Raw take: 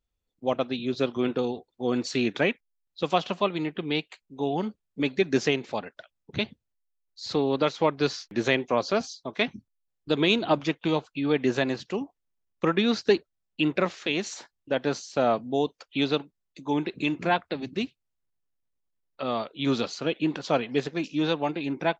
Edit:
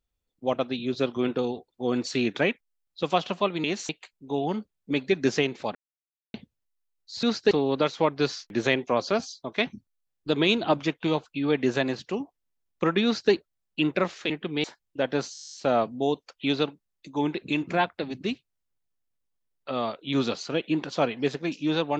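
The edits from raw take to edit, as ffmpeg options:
-filter_complex "[0:a]asplit=19[a][b][c][d][e][f][g][h][i][j][k][l][m][n][o][p][q][r][s];[a]atrim=end=3.642[t];[b]atrim=start=14.108:end=14.362[u];[c]atrim=start=3.978:end=5.84,asetpts=PTS-STARTPTS,afade=t=out:st=1.858:d=0.004:c=hsin[v];[d]atrim=start=5.84:end=6.43,asetpts=PTS-STARTPTS,volume=0[w];[e]atrim=start=6.43:end=7.322,asetpts=PTS-STARTPTS,afade=t=in:d=0.004:c=hsin[x];[f]atrim=start=12.848:end=13.132[y];[g]atrim=start=7.318:end=14.112[z];[h]atrim=start=3.638:end=3.982[aa];[i]atrim=start=14.358:end=15.072[ab];[j]atrim=start=15.048:end=15.072[ac];[k]atrim=start=15.048:end=15.072[ad];[l]atrim=start=15.048:end=15.072[ae];[m]atrim=start=15.048:end=15.072[af];[n]atrim=start=15.048:end=15.072[ag];[o]atrim=start=15.048:end=15.072[ah];[p]atrim=start=15.048:end=15.072[ai];[q]atrim=start=15.048:end=15.072[aj];[r]atrim=start=15.048:end=15.072[ak];[s]atrim=start=15.048[al];[t][u]acrossfade=d=0.004:c1=hsin:c2=hsin[am];[v][w][x]concat=n=3:v=0:a=1[an];[am][an]acrossfade=d=0.004:c1=hsin:c2=hsin[ao];[ao][y]acrossfade=d=0.004:c1=hsin:c2=hsin[ap];[ap][z]acrossfade=d=0.004:c1=hsin:c2=hsin[aq];[aq][aa]acrossfade=d=0.004:c1=hsin:c2=hsin[ar];[ar][ab]acrossfade=d=0.004:c1=hsin:c2=hsin[as];[as][ac]acrossfade=d=0.004:c1=hsin:c2=hsin[at];[at][ad]acrossfade=d=0.004:c1=hsin:c2=hsin[au];[au][ae]acrossfade=d=0.004:c1=hsin:c2=hsin[av];[av][af]acrossfade=d=0.004:c1=hsin:c2=hsin[aw];[aw][ag]acrossfade=d=0.004:c1=hsin:c2=hsin[ax];[ax][ah]acrossfade=d=0.004:c1=hsin:c2=hsin[ay];[ay][ai]acrossfade=d=0.004:c1=hsin:c2=hsin[az];[az][aj]acrossfade=d=0.004:c1=hsin:c2=hsin[ba];[ba][ak]acrossfade=d=0.004:c1=hsin:c2=hsin[bb];[bb][al]acrossfade=d=0.004:c1=hsin:c2=hsin"

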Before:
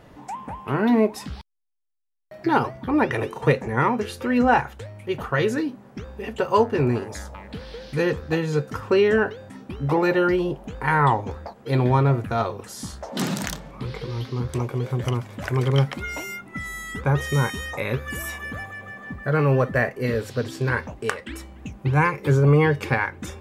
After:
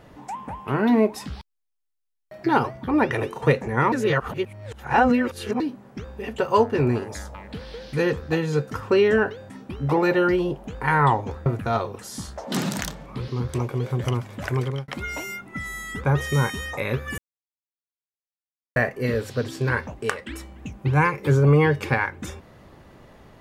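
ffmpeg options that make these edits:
-filter_complex "[0:a]asplit=8[a][b][c][d][e][f][g][h];[a]atrim=end=3.922[i];[b]atrim=start=3.918:end=5.602,asetpts=PTS-STARTPTS,areverse[j];[c]atrim=start=5.598:end=11.462[k];[d]atrim=start=12.108:end=13.932[l];[e]atrim=start=14.278:end=15.88,asetpts=PTS-STARTPTS,afade=t=out:st=1.232:d=0.37[m];[f]atrim=start=15.88:end=18.18,asetpts=PTS-STARTPTS,afade=t=in:d=0.004:c=hsin,afade=t=out:st=2.296:d=0.004:c=hsin[n];[g]atrim=start=18.18:end=19.76,asetpts=PTS-STARTPTS,volume=0[o];[h]atrim=start=19.76,asetpts=PTS-STARTPTS,afade=t=in:d=0.004:c=hsin[p];[i][j]acrossfade=d=0.004:c1=hsin:c2=hsin[q];[q][k]acrossfade=d=0.004:c1=hsin:c2=hsin[r];[r][l]acrossfade=d=0.004:c1=hsin:c2=hsin[s];[m][n][o][p]concat=n=4:v=0:a=1[t];[s][t]acrossfade=d=0.004:c1=hsin:c2=hsin"

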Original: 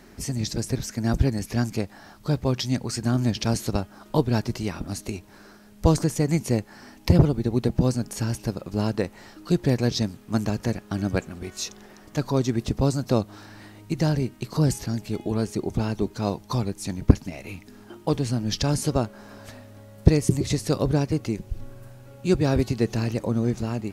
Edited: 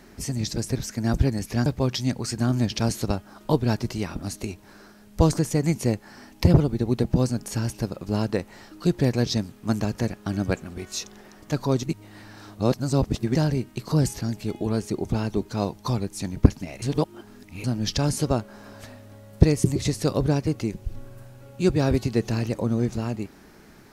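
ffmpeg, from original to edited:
-filter_complex "[0:a]asplit=6[a][b][c][d][e][f];[a]atrim=end=1.662[g];[b]atrim=start=2.308:end=12.482[h];[c]atrim=start=12.478:end=14.002,asetpts=PTS-STARTPTS,areverse[i];[d]atrim=start=13.998:end=17.472[j];[e]atrim=start=17.468:end=18.292,asetpts=PTS-STARTPTS,areverse[k];[f]atrim=start=18.288[l];[g][h]acrossfade=d=0.004:c1=hsin:c2=hsin[m];[m][i]acrossfade=d=0.004:c1=hsin:c2=hsin[n];[n][j]acrossfade=d=0.004:c1=hsin:c2=hsin[o];[o][k]acrossfade=d=0.004:c1=hsin:c2=hsin[p];[p][l]acrossfade=d=0.004:c1=hsin:c2=hsin"

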